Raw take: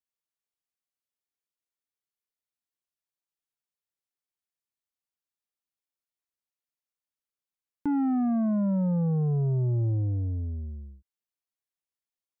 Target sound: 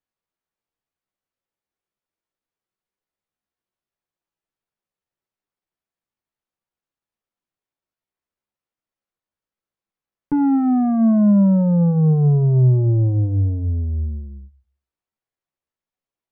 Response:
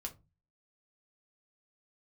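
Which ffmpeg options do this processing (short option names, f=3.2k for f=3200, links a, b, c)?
-filter_complex "[0:a]lowpass=f=1.2k:p=1,atempo=0.76,asplit=2[a][b];[1:a]atrim=start_sample=2205[c];[b][c]afir=irnorm=-1:irlink=0,volume=-5.5dB[d];[a][d]amix=inputs=2:normalize=0,volume=7.5dB"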